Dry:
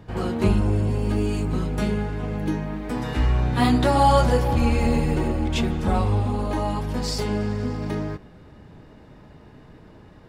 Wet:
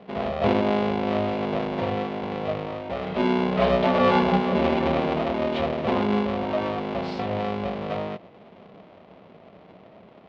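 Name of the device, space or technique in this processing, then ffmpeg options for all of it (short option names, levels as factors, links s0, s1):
ring modulator pedal into a guitar cabinet: -af "aeval=exprs='val(0)*sgn(sin(2*PI*310*n/s))':c=same,highpass=89,equalizer=f=130:t=q:w=4:g=-5,equalizer=f=190:t=q:w=4:g=7,equalizer=f=650:t=q:w=4:g=9,equalizer=f=1600:t=q:w=4:g=-6,lowpass=f=3500:w=0.5412,lowpass=f=3500:w=1.3066,volume=0.631"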